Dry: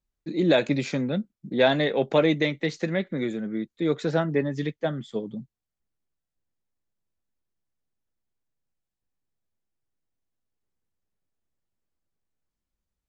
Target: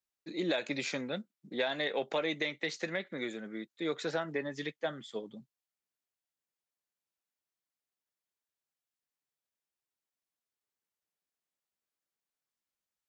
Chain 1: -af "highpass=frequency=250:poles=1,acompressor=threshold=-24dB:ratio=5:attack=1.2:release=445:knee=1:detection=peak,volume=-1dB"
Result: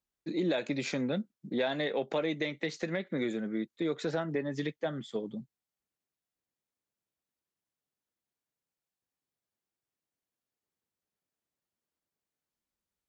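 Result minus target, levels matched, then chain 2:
250 Hz band +3.5 dB
-af "highpass=frequency=920:poles=1,acompressor=threshold=-24dB:ratio=5:attack=1.2:release=445:knee=1:detection=peak,volume=-1dB"

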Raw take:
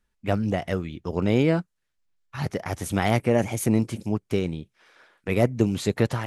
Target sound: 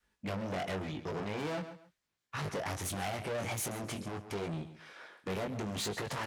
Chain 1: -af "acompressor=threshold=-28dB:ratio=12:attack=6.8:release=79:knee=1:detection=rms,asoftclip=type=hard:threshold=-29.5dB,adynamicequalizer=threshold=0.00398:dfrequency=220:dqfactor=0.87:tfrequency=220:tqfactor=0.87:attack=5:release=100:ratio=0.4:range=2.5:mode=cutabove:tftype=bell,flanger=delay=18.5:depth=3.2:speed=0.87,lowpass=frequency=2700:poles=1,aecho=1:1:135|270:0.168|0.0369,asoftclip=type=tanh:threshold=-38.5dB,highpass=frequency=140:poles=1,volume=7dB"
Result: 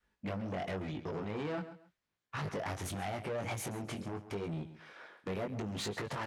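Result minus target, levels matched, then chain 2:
downward compressor: peak gain reduction +6.5 dB; 8,000 Hz band −4.5 dB
-af "acompressor=threshold=-21dB:ratio=12:attack=6.8:release=79:knee=1:detection=rms,asoftclip=type=hard:threshold=-29.5dB,adynamicequalizer=threshold=0.00398:dfrequency=220:dqfactor=0.87:tfrequency=220:tqfactor=0.87:attack=5:release=100:ratio=0.4:range=2.5:mode=cutabove:tftype=bell,flanger=delay=18.5:depth=3.2:speed=0.87,lowpass=frequency=8800:poles=1,aecho=1:1:135|270:0.168|0.0369,asoftclip=type=tanh:threshold=-38.5dB,highpass=frequency=140:poles=1,volume=7dB"

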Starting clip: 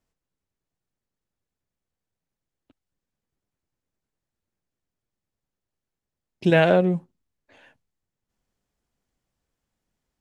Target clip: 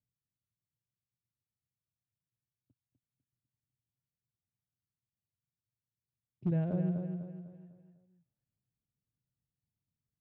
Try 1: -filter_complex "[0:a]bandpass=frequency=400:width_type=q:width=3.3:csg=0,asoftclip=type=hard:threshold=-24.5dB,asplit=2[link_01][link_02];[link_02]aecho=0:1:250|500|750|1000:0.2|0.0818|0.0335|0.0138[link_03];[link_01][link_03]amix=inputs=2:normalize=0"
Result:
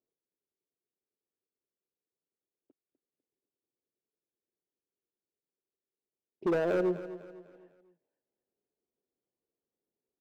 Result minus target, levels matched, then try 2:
125 Hz band −15.0 dB; echo-to-direct −8 dB
-filter_complex "[0:a]bandpass=frequency=120:width_type=q:width=3.3:csg=0,asoftclip=type=hard:threshold=-24.5dB,asplit=2[link_01][link_02];[link_02]aecho=0:1:250|500|750|1000|1250:0.501|0.205|0.0842|0.0345|0.0142[link_03];[link_01][link_03]amix=inputs=2:normalize=0"

